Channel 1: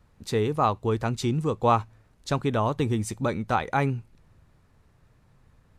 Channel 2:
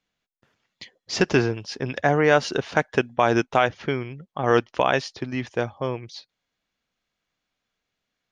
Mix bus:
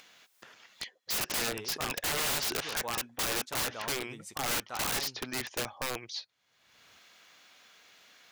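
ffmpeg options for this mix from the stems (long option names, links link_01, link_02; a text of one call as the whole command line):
ffmpeg -i stem1.wav -i stem2.wav -filter_complex "[0:a]agate=range=-8dB:threshold=-50dB:ratio=16:detection=peak,adelay=1200,volume=-12dB[link_01];[1:a]aeval=exprs='0.112*(abs(mod(val(0)/0.112+3,4)-2)-1)':channel_layout=same,volume=2dB[link_02];[link_01][link_02]amix=inputs=2:normalize=0,highpass=frequency=880:poles=1,aeval=exprs='(mod(18.8*val(0)+1,2)-1)/18.8':channel_layout=same,acompressor=mode=upward:threshold=-40dB:ratio=2.5" out.wav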